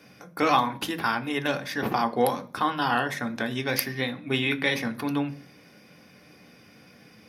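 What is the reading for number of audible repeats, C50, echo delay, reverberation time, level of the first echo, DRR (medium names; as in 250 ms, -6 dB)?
no echo, 18.0 dB, no echo, 0.40 s, no echo, 7.0 dB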